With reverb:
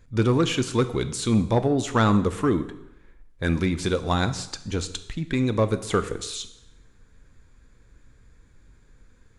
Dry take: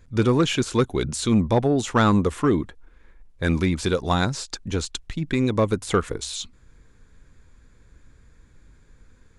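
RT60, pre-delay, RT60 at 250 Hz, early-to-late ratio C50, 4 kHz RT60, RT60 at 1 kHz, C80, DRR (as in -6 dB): 0.85 s, 5 ms, 0.85 s, 14.0 dB, 0.80 s, 0.85 s, 16.0 dB, 10.5 dB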